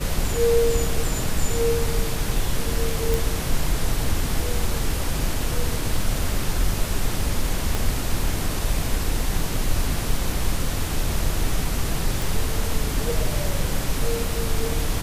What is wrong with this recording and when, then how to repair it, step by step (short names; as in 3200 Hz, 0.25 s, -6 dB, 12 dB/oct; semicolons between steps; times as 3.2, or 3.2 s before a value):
3.14 pop
7.75 pop
12.22 pop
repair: de-click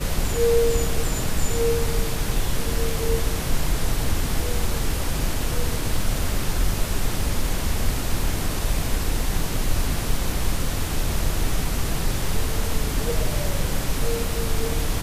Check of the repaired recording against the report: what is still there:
7.75 pop